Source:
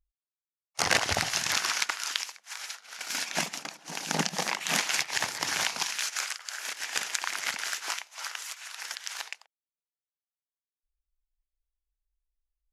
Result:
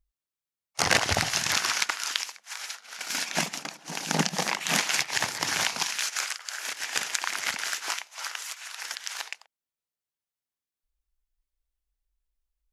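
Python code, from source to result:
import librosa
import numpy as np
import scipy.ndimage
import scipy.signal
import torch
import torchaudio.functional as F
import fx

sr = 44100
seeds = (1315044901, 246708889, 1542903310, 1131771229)

y = fx.peak_eq(x, sr, hz=110.0, db=3.5, octaves=2.8)
y = y * 10.0 ** (2.0 / 20.0)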